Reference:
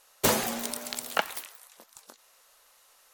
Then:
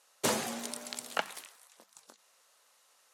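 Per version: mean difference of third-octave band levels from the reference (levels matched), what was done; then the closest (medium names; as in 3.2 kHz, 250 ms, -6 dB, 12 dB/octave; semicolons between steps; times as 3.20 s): 1.5 dB: Chebyshev band-pass 140–9400 Hz, order 2; hum notches 50/100/150/200 Hz; trim -4.5 dB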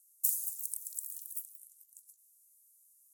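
19.0 dB: inverse Chebyshev high-pass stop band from 2.1 kHz, stop band 70 dB; spring tank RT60 2.2 s, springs 46 ms, chirp 75 ms, DRR 5.5 dB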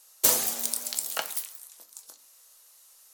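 6.0 dB: tone controls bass -7 dB, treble +14 dB; simulated room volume 160 m³, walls furnished, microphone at 0.61 m; trim -7 dB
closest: first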